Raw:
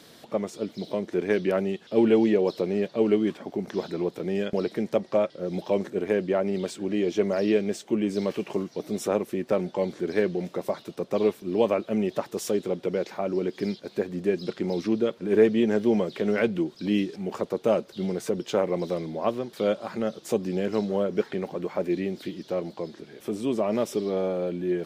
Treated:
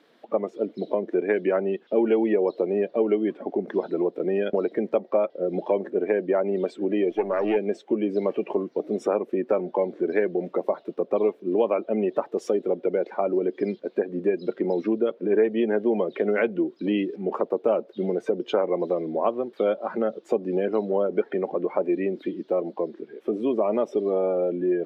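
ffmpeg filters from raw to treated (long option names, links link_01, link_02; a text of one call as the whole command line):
ffmpeg -i in.wav -filter_complex "[0:a]asplit=3[link_01][link_02][link_03];[link_01]afade=type=out:start_time=7.09:duration=0.02[link_04];[link_02]aeval=exprs='if(lt(val(0),0),0.251*val(0),val(0))':channel_layout=same,afade=type=in:start_time=7.09:duration=0.02,afade=type=out:start_time=7.55:duration=0.02[link_05];[link_03]afade=type=in:start_time=7.55:duration=0.02[link_06];[link_04][link_05][link_06]amix=inputs=3:normalize=0,afftdn=noise_reduction=15:noise_floor=-37,acrossover=split=240 3200:gain=0.0794 1 0.126[link_07][link_08][link_09];[link_07][link_08][link_09]amix=inputs=3:normalize=0,acompressor=threshold=-30dB:ratio=2.5,volume=8.5dB" out.wav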